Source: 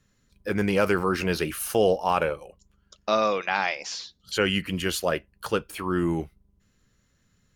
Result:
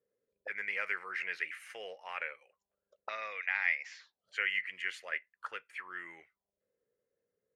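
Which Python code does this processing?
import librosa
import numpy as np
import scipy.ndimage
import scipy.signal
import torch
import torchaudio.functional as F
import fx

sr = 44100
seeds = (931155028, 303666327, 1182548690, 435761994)

y = fx.graphic_eq_10(x, sr, hz=(250, 500, 2000, 8000), db=(-3, 7, 8, 10))
y = fx.auto_wah(y, sr, base_hz=460.0, top_hz=2000.0, q=5.2, full_db=-24.0, direction='up')
y = y * librosa.db_to_amplitude(-5.0)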